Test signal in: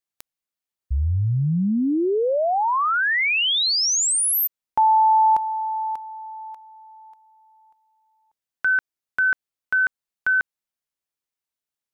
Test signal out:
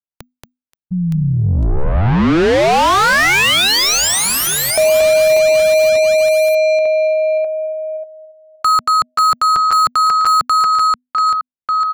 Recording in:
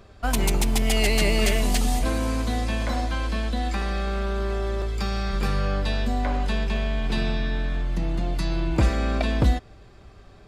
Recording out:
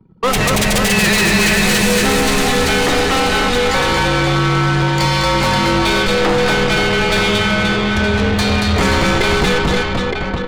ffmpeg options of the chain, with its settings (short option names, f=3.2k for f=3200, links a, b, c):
-filter_complex "[0:a]asplit=2[a][b];[b]aecho=0:1:230|529|917.7|1423|2080:0.631|0.398|0.251|0.158|0.1[c];[a][c]amix=inputs=2:normalize=0,anlmdn=0.398,asplit=2[d][e];[e]highpass=f=720:p=1,volume=31dB,asoftclip=type=tanh:threshold=-5dB[f];[d][f]amix=inputs=2:normalize=0,lowpass=f=5.4k:p=1,volume=-6dB,afreqshift=-250,volume=-1dB"